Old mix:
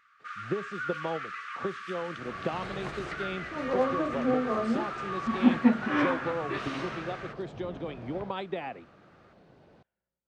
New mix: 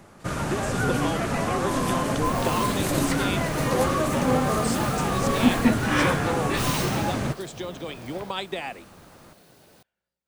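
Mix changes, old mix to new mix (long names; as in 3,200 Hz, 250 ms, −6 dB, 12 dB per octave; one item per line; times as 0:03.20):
first sound: remove linear-phase brick-wall high-pass 1,100 Hz
master: remove head-to-tape spacing loss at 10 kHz 35 dB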